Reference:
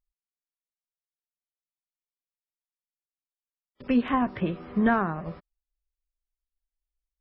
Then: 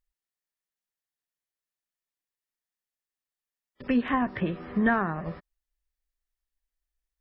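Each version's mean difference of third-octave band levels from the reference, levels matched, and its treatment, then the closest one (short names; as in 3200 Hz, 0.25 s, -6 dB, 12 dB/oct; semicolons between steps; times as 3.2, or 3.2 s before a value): 1.5 dB: bell 1800 Hz +7.5 dB 0.25 oct; in parallel at -1 dB: compressor, threshold -29 dBFS, peak gain reduction 11.5 dB; on the sum: gain -4 dB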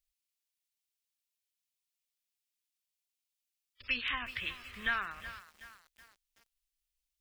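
12.5 dB: EQ curve 100 Hz 0 dB, 150 Hz -25 dB, 860 Hz -15 dB, 1200 Hz -3 dB, 2600 Hz +13 dB; lo-fi delay 0.373 s, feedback 55%, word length 7-bit, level -13 dB; gain -5.5 dB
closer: first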